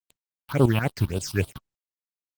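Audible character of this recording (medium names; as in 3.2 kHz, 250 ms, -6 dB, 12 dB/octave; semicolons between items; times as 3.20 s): a quantiser's noise floor 6-bit, dither none; tremolo saw up 7.6 Hz, depth 75%; phasing stages 6, 3.6 Hz, lowest notch 470–1900 Hz; Opus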